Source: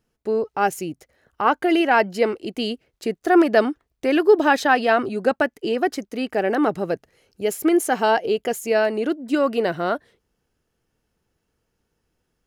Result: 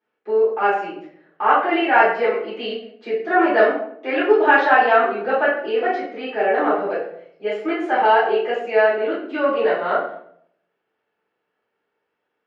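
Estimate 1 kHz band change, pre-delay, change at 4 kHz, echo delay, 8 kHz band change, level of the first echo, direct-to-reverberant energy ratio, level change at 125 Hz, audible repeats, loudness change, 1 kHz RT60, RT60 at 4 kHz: +4.0 dB, 5 ms, −1.5 dB, no echo audible, below −25 dB, no echo audible, −10.5 dB, below −10 dB, no echo audible, +2.0 dB, 0.60 s, 0.45 s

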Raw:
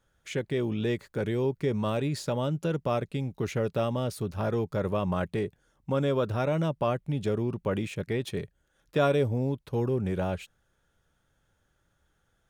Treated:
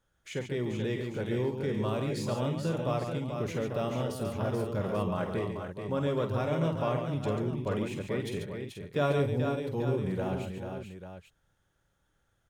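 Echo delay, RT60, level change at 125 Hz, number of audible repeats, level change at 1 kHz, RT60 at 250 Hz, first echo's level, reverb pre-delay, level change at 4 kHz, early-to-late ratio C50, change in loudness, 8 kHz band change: 48 ms, no reverb audible, −2.0 dB, 5, −2.0 dB, no reverb audible, −7.5 dB, no reverb audible, −2.0 dB, no reverb audible, −2.5 dB, −2.0 dB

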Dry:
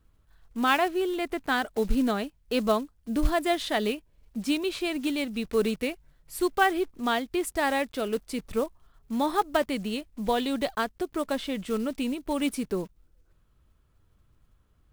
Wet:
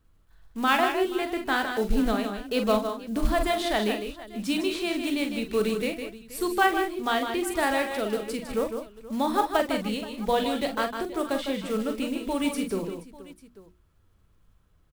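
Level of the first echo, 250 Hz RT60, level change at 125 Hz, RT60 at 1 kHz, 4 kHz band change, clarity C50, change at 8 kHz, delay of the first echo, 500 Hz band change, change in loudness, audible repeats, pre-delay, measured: −9.0 dB, no reverb audible, +1.0 dB, no reverb audible, +1.5 dB, no reverb audible, +1.5 dB, 42 ms, +1.5 dB, +1.0 dB, 5, no reverb audible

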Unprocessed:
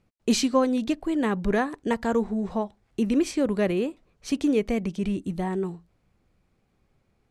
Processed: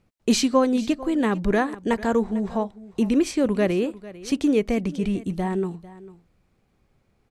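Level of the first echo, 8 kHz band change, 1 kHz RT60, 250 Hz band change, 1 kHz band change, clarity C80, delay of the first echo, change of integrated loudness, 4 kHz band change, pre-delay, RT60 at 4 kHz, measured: −18.0 dB, +2.5 dB, no reverb audible, +2.5 dB, +2.5 dB, no reverb audible, 448 ms, +2.5 dB, +2.5 dB, no reverb audible, no reverb audible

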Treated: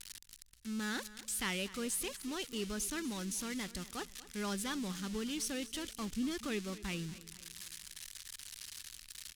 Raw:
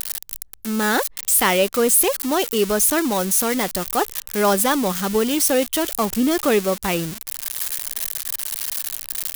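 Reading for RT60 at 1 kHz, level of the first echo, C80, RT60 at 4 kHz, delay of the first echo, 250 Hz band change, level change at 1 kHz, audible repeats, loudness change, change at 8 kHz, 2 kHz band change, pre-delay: no reverb audible, −17.0 dB, no reverb audible, no reverb audible, 238 ms, −16.5 dB, −24.0 dB, 3, −20.0 dB, −19.5 dB, −17.0 dB, no reverb audible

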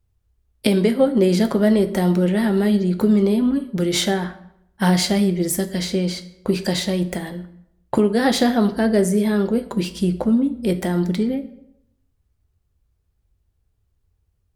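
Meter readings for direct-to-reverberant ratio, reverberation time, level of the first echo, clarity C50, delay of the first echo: 10.0 dB, 0.75 s, no echo audible, 14.0 dB, no echo audible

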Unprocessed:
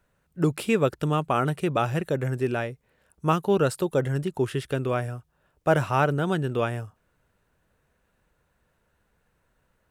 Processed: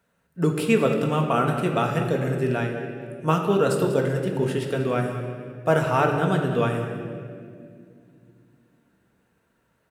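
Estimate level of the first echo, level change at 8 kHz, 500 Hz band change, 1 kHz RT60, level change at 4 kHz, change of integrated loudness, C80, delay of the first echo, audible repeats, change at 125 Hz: −12.5 dB, +1.5 dB, +3.0 dB, 1.8 s, +2.0 dB, +2.0 dB, 5.5 dB, 192 ms, 1, +2.0 dB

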